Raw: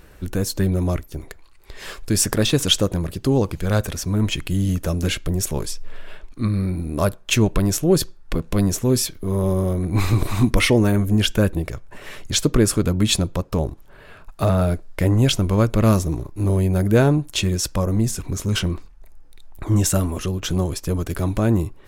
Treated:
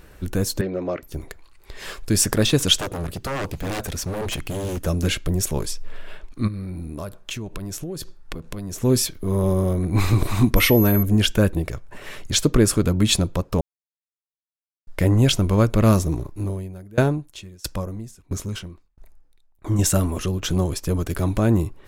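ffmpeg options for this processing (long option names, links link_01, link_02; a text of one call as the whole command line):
ffmpeg -i in.wav -filter_complex "[0:a]asettb=1/sr,asplit=3[link_01][link_02][link_03];[link_01]atrim=end=0.614[link_04];[link_02]atrim=start=0.61:end=1.03,asetpts=PTS-STARTPTS,afade=type=in:duration=0.004:curve=qsin,afade=type=out:start_time=0.416:duration=0.004:curve=qsin,highpass=300,equalizer=frequency=520:width_type=q:width=4:gain=6,equalizer=frequency=930:width_type=q:width=4:gain=-4,equalizer=frequency=3500:width_type=q:width=4:gain=-9,lowpass=frequency=4400:width=0.5412,lowpass=frequency=4400:width=1.3066[link_05];[link_03]atrim=start=1.026[link_06];[link_04][link_05]acrossfade=duration=0.004:curve1=hsin:curve2=qsin[link_07];[link_07][link_06]acrossfade=duration=0.004:curve1=qsin:curve2=hsin,asplit=3[link_08][link_09][link_10];[link_08]afade=type=out:start_time=2.77:duration=0.02[link_11];[link_09]aeval=exprs='0.0891*(abs(mod(val(0)/0.0891+3,4)-2)-1)':channel_layout=same,afade=type=in:start_time=2.77:duration=0.02,afade=type=out:start_time=4.84:duration=0.02[link_12];[link_10]afade=type=in:start_time=4.84:duration=0.02[link_13];[link_11][link_12][link_13]amix=inputs=3:normalize=0,asplit=3[link_14][link_15][link_16];[link_14]afade=type=out:start_time=6.47:duration=0.02[link_17];[link_15]acompressor=threshold=-27dB:ratio=10:attack=3.2:release=140:knee=1:detection=peak,afade=type=in:start_time=6.47:duration=0.02,afade=type=out:start_time=8.8:duration=0.02[link_18];[link_16]afade=type=in:start_time=8.8:duration=0.02[link_19];[link_17][link_18][link_19]amix=inputs=3:normalize=0,asettb=1/sr,asplit=3[link_20][link_21][link_22];[link_20]atrim=end=10.564[link_23];[link_21]atrim=start=10.56:end=11.03,asetpts=PTS-STARTPTS,afade=type=in:duration=0.004:curve=qsin,afade=type=out:start_time=0.466:duration=0.004:curve=qsin,aeval=exprs='val(0)+0.0562*sin(2*PI*12000*n/s)':channel_layout=same[link_24];[link_22]atrim=start=11.026[link_25];[link_23][link_24]acrossfade=duration=0.004:curve1=hsin:curve2=qsin[link_26];[link_26][link_25]acrossfade=duration=0.004:curve1=qsin:curve2=hsin,asettb=1/sr,asplit=3[link_27][link_28][link_29];[link_27]atrim=end=16.314[link_30];[link_28]atrim=start=16.31:end=19.79,asetpts=PTS-STARTPTS,afade=type=in:duration=0.004:curve=qsin,afade=type=out:start_time=3.476:duration=0.004:curve=qsin,aeval=exprs='val(0)*pow(10,-27*if(lt(mod(1.5*n/s,1),2*abs(1.5)/1000),1-mod(1.5*n/s,1)/(2*abs(1.5)/1000),(mod(1.5*n/s,1)-2*abs(1.5)/1000)/(1-2*abs(1.5)/1000))/20)':channel_layout=same[link_31];[link_29]atrim=start=19.786[link_32];[link_30][link_31]acrossfade=duration=0.004:curve1=hsin:curve2=qsin[link_33];[link_33][link_32]acrossfade=duration=0.004:curve1=qsin:curve2=hsin,asplit=3[link_34][link_35][link_36];[link_34]atrim=end=13.61,asetpts=PTS-STARTPTS,afade=type=out:start_time=13.606:duration=0.004:curve=hsin[link_37];[link_35]atrim=start=13.61:end=14.87,asetpts=PTS-STARTPTS,volume=0[link_38];[link_36]atrim=start=14.87,asetpts=PTS-STARTPTS,afade=type=in:duration=0.004:curve=hsin[link_39];[link_37][link_38][link_39]concat=n=3:v=0:a=1" out.wav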